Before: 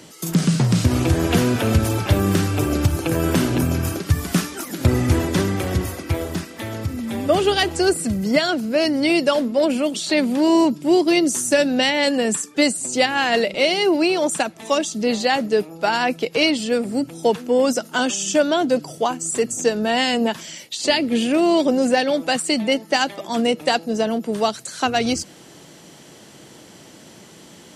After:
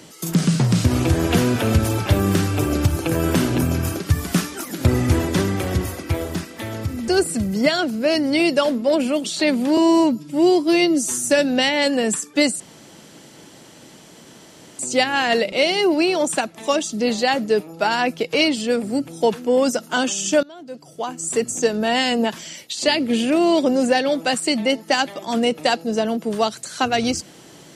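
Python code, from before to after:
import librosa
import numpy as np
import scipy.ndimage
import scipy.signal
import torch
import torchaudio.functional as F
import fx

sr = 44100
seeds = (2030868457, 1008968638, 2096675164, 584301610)

y = fx.edit(x, sr, fx.cut(start_s=7.08, length_s=0.7),
    fx.stretch_span(start_s=10.47, length_s=0.98, factor=1.5),
    fx.insert_room_tone(at_s=12.81, length_s=2.19),
    fx.fade_in_from(start_s=18.45, length_s=0.9, curve='qua', floor_db=-23.0), tone=tone)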